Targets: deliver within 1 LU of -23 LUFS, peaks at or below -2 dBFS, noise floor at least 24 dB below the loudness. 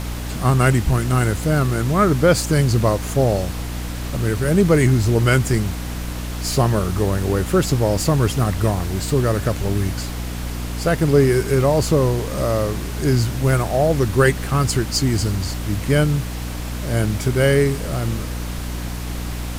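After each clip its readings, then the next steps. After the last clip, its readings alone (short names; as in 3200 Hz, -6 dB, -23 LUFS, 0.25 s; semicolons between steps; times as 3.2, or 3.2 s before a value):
hum 60 Hz; harmonics up to 300 Hz; hum level -25 dBFS; noise floor -27 dBFS; noise floor target -44 dBFS; loudness -19.5 LUFS; peak -2.5 dBFS; loudness target -23.0 LUFS
-> notches 60/120/180/240/300 Hz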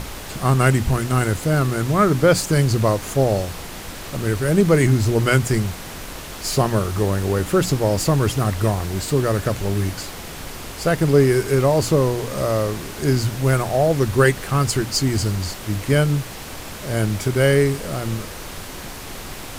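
hum none; noise floor -34 dBFS; noise floor target -44 dBFS
-> noise print and reduce 10 dB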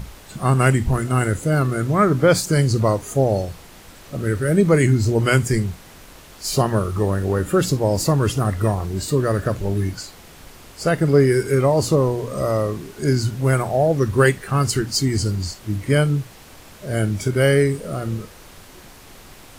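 noise floor -44 dBFS; loudness -19.5 LUFS; peak -3.5 dBFS; loudness target -23.0 LUFS
-> gain -3.5 dB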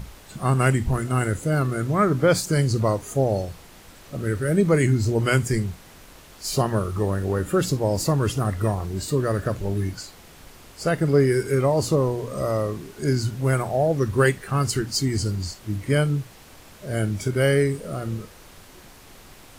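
loudness -23.0 LUFS; peak -7.0 dBFS; noise floor -47 dBFS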